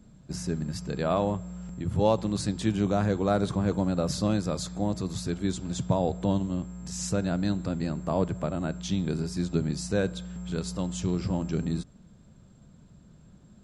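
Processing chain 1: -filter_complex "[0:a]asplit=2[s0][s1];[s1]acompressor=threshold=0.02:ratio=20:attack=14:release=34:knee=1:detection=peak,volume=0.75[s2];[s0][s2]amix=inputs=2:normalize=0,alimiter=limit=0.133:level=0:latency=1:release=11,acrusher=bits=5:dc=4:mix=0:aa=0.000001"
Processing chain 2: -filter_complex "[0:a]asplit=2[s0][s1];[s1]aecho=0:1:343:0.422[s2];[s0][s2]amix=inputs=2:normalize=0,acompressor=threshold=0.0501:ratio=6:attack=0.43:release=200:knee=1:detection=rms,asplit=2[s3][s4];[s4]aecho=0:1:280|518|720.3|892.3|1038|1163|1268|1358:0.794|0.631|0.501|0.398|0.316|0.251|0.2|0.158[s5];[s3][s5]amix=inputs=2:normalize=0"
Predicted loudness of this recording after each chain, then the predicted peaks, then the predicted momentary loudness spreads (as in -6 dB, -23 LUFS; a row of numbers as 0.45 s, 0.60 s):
-28.0 LUFS, -31.0 LUFS; -18.0 dBFS, -16.0 dBFS; 5 LU, 4 LU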